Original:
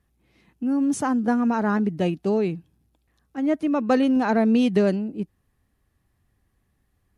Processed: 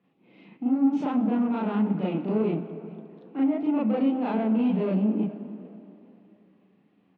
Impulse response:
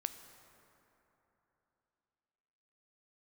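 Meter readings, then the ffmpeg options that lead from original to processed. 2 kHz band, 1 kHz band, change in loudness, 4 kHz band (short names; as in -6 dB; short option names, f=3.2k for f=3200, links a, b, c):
-11.0 dB, -6.5 dB, -3.0 dB, n/a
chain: -filter_complex "[0:a]asplit=2[a][b];[b]acompressor=threshold=-34dB:ratio=6,volume=1dB[c];[a][c]amix=inputs=2:normalize=0,alimiter=limit=-19dB:level=0:latency=1:release=58,flanger=delay=5.5:depth=8.2:regen=67:speed=1.6:shape=triangular,asoftclip=type=tanh:threshold=-29dB,highpass=f=180:w=0.5412,highpass=f=180:w=1.3066,equalizer=f=190:t=q:w=4:g=6,equalizer=f=280:t=q:w=4:g=4,equalizer=f=480:t=q:w=4:g=3,equalizer=f=1.2k:t=q:w=4:g=-3,equalizer=f=1.7k:t=q:w=4:g=-10,equalizer=f=2.6k:t=q:w=4:g=3,lowpass=f=3.1k:w=0.5412,lowpass=f=3.1k:w=1.3066,asplit=4[d][e][f][g];[e]adelay=421,afreqshift=37,volume=-22dB[h];[f]adelay=842,afreqshift=74,volume=-30.9dB[i];[g]adelay=1263,afreqshift=111,volume=-39.7dB[j];[d][h][i][j]amix=inputs=4:normalize=0,asplit=2[k][l];[1:a]atrim=start_sample=2205,asetrate=52920,aresample=44100,adelay=37[m];[l][m]afir=irnorm=-1:irlink=0,volume=7dB[n];[k][n]amix=inputs=2:normalize=0"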